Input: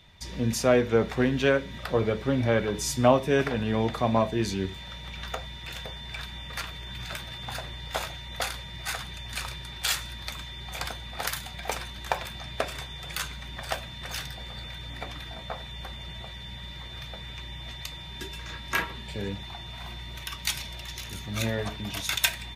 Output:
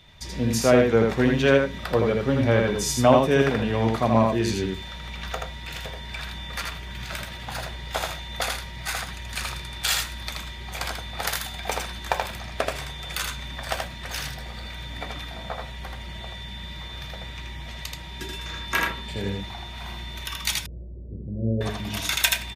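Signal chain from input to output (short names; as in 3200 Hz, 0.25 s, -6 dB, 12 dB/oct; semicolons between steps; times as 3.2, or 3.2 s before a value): 20.58–21.61 steep low-pass 540 Hz 48 dB/oct; echo 80 ms -3.5 dB; gain +2.5 dB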